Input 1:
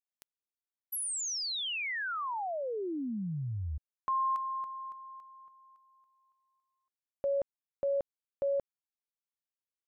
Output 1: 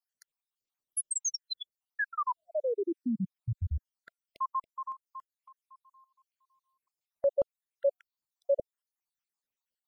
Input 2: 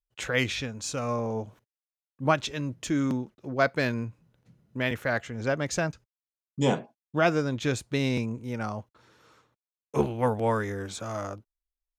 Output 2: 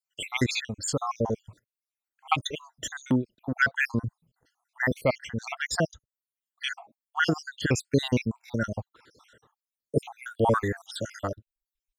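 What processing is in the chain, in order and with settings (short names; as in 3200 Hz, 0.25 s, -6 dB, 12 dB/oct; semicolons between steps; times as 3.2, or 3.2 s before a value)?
random spectral dropouts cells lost 66%; reverb removal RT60 0.54 s; gain +7 dB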